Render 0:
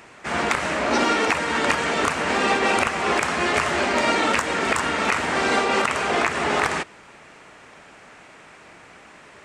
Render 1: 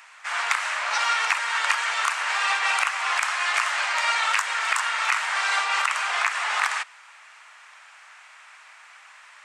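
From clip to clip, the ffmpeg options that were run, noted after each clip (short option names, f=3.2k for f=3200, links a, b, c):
-af "highpass=f=960:w=0.5412,highpass=f=960:w=1.3066"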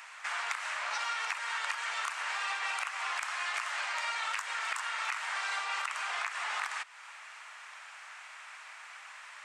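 -af "acompressor=threshold=-36dB:ratio=3"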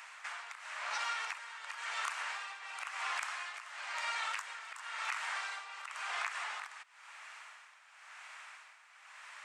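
-af "tremolo=f=0.96:d=0.72,volume=-2dB"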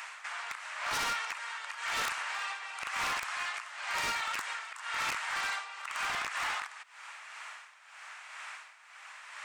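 -af "tremolo=f=2:d=0.49,aeval=exprs='0.0178*(abs(mod(val(0)/0.0178+3,4)-2)-1)':c=same,volume=8dB"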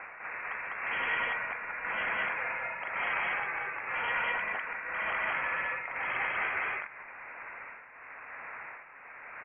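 -filter_complex "[0:a]asplit=2[a][b];[b]aecho=0:1:142.9|201.2:0.251|1[c];[a][c]amix=inputs=2:normalize=0,lowpass=f=2.8k:t=q:w=0.5098,lowpass=f=2.8k:t=q:w=0.6013,lowpass=f=2.8k:t=q:w=0.9,lowpass=f=2.8k:t=q:w=2.563,afreqshift=-3300"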